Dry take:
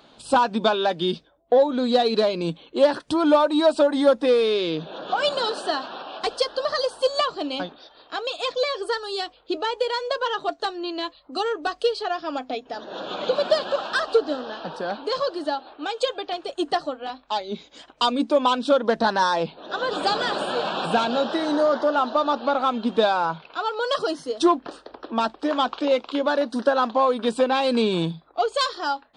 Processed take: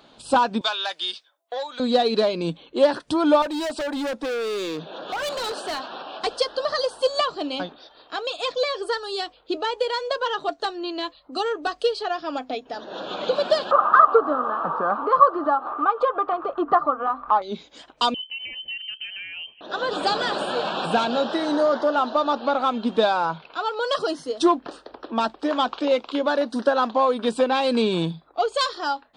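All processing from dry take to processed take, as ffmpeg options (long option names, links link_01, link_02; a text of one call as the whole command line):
ffmpeg -i in.wav -filter_complex "[0:a]asettb=1/sr,asplit=3[link_01][link_02][link_03];[link_01]atrim=end=0.614[link_04];[link_02]atrim=start=0.61:end=1.8,asetpts=PTS-STARTPTS,afade=type=in:duration=0.004:curve=qsin,afade=type=out:start_time=1.186:duration=0.004:curve=qsin,highpass=1200,highshelf=frequency=4200:gain=7.5[link_05];[link_03]atrim=start=1.796[link_06];[link_04][link_05]acrossfade=duration=0.004:curve1=hsin:curve2=qsin[link_07];[link_07][link_06]acrossfade=duration=0.004:curve1=qsin:curve2=hsin,asettb=1/sr,asplit=3[link_08][link_09][link_10];[link_08]atrim=end=3.424[link_11];[link_09]atrim=start=3.42:end=5.92,asetpts=PTS-STARTPTS,afade=type=in:duration=0.004:curve=qsin,afade=type=out:start_time=2.496:duration=0.004:curve=qsin,lowshelf=frequency=170:gain=-7,volume=25dB,asoftclip=hard,volume=-25dB[link_12];[link_10]atrim=start=5.916[link_13];[link_11][link_12]acrossfade=duration=0.004:curve1=hsin:curve2=qsin[link_14];[link_14][link_13]acrossfade=duration=0.004:curve1=qsin:curve2=hsin,asettb=1/sr,asplit=3[link_15][link_16][link_17];[link_15]atrim=end=13.714[link_18];[link_16]atrim=start=13.71:end=17.42,asetpts=PTS-STARTPTS,afade=type=in:duration=0.004:curve=qsin,afade=type=out:start_time=3.706:duration=0.004:curve=qsin,lowpass=frequency=1200:width_type=q:width=13,acompressor=mode=upward:threshold=-20dB:ratio=2.5:attack=3.2:release=140:knee=2.83:detection=peak[link_19];[link_17]atrim=start=17.416[link_20];[link_18][link_19]acrossfade=duration=0.004:curve1=hsin:curve2=qsin[link_21];[link_21][link_20]acrossfade=duration=0.004:curve1=qsin:curve2=hsin,asettb=1/sr,asplit=3[link_22][link_23][link_24];[link_22]atrim=end=18.144[link_25];[link_23]atrim=start=18.14:end=19.61,asetpts=PTS-STARTPTS,afade=type=in:duration=0.004:curve=qsin,afade=type=out:start_time=1.466:duration=0.004:curve=qsin,equalizer=frequency=1400:width=0.44:gain=-14.5,acompressor=threshold=-33dB:ratio=2.5:attack=3.2:release=140:knee=1:detection=peak,lowpass=frequency=2800:width_type=q:width=0.5098,lowpass=frequency=2800:width_type=q:width=0.6013,lowpass=frequency=2800:width_type=q:width=0.9,lowpass=frequency=2800:width_type=q:width=2.563,afreqshift=-3300[link_26];[link_24]atrim=start=19.606[link_27];[link_25][link_26]acrossfade=duration=0.004:curve1=hsin:curve2=qsin[link_28];[link_28][link_27]acrossfade=duration=0.004:curve1=qsin:curve2=hsin" out.wav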